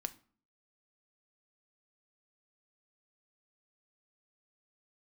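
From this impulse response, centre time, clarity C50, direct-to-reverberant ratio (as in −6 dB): 4 ms, 18.0 dB, 9.5 dB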